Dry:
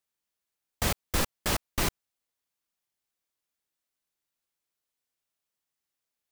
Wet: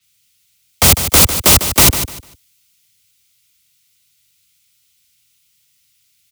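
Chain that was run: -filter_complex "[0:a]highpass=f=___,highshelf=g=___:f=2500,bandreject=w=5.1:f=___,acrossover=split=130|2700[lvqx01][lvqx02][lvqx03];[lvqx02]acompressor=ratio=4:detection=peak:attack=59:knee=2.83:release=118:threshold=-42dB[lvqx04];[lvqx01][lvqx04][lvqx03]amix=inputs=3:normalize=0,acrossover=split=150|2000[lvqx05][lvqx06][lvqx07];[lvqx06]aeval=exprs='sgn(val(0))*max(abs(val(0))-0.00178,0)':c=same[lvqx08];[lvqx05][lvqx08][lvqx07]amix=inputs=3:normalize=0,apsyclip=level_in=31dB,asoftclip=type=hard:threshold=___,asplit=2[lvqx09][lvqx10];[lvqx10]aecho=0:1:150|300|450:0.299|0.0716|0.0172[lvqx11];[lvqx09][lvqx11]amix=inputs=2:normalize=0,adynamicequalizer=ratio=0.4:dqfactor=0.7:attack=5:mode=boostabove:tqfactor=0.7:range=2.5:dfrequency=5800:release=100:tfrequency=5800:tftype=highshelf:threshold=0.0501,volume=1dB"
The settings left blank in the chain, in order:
84, -5.5, 1700, -9.5dB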